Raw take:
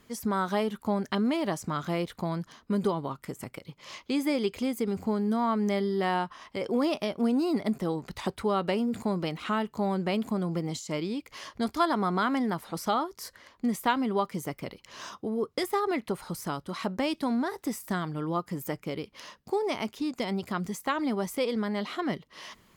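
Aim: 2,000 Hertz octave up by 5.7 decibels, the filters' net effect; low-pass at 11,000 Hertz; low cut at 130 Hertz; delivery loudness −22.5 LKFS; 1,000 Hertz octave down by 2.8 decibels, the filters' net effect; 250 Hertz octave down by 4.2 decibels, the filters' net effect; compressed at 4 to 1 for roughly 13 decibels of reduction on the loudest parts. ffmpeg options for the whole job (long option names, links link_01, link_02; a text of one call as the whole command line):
ffmpeg -i in.wav -af "highpass=130,lowpass=11000,equalizer=frequency=250:width_type=o:gain=-4.5,equalizer=frequency=1000:width_type=o:gain=-6,equalizer=frequency=2000:width_type=o:gain=9,acompressor=threshold=-37dB:ratio=4,volume=17.5dB" out.wav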